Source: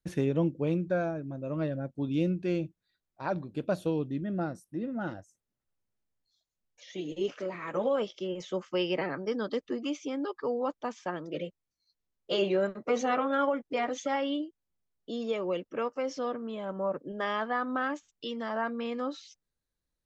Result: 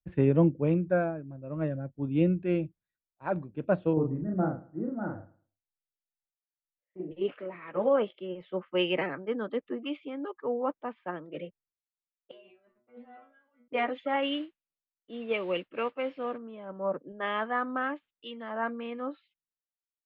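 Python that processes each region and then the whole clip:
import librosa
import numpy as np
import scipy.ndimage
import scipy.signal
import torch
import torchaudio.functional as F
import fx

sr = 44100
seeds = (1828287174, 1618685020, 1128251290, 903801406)

y = fx.chain(x, sr, fx.lowpass(hz=1500.0, slope=24),
    fx.doubler(ms=38.0, db=-3.0),
    fx.echo_feedback(ms=110, feedback_pct=37, wet_db=-15.0), at=(3.93, 7.11))
y = fx.chain(y, sr, fx.over_compress(threshold_db=-32.0, ratio=-1.0),
    fx.stiff_resonator(f0_hz=120.0, decay_s=0.43, stiffness=0.002), at=(12.31, 13.68))
y = fx.chain(y, sr, fx.peak_eq(hz=2600.0, db=8.0, octaves=0.38),
    fx.mod_noise(seeds[0], snr_db=17), at=(14.22, 16.38))
y = scipy.signal.sosfilt(scipy.signal.cheby2(4, 40, 5600.0, 'lowpass', fs=sr, output='sos'), y)
y = fx.band_widen(y, sr, depth_pct=100)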